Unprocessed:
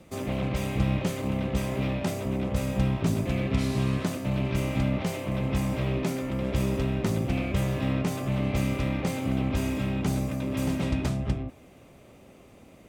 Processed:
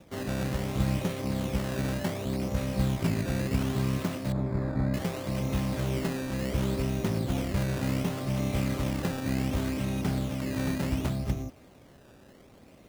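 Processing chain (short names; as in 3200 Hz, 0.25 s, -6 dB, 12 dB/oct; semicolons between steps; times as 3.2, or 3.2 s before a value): decimation with a swept rate 14×, swing 100% 0.68 Hz; 4.32–4.94 running mean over 15 samples; gain -2 dB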